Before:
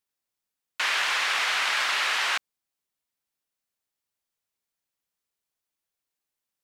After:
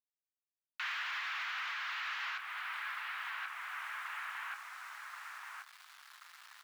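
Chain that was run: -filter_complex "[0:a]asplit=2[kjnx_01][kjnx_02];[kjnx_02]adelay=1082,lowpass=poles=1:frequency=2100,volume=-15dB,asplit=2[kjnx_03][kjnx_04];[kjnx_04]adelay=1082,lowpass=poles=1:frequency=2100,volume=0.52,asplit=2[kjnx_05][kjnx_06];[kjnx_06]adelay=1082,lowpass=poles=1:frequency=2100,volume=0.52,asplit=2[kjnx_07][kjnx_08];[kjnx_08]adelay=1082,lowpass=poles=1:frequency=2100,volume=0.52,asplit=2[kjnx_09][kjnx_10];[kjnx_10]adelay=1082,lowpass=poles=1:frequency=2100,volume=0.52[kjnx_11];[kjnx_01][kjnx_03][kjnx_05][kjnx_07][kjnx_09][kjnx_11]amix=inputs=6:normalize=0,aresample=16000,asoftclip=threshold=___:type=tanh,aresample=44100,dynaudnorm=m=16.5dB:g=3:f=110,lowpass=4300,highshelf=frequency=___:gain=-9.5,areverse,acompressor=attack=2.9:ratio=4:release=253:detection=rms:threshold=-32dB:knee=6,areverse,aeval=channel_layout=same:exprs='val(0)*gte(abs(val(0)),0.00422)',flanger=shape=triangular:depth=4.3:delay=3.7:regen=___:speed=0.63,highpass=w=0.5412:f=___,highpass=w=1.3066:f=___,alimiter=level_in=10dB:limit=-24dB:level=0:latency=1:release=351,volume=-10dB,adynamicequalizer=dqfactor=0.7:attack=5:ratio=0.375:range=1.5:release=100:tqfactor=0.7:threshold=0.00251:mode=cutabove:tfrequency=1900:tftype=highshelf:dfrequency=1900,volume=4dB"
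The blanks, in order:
-28dB, 3200, 80, 1100, 1100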